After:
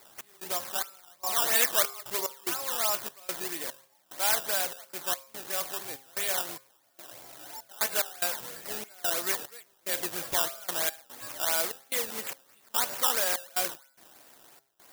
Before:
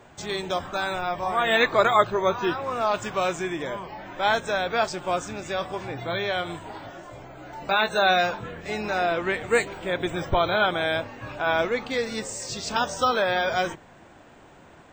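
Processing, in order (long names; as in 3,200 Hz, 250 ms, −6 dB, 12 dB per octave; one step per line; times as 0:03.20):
gate pattern "x.xx..xxx.x.xx" 73 BPM −24 dB
hum removal 134.3 Hz, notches 18
in parallel at −1.5 dB: brickwall limiter −16.5 dBFS, peak gain reduction 9 dB
on the sum: sample-and-hold swept by an LFO 14×, swing 100% 3 Hz
RIAA equalisation recording
level −12.5 dB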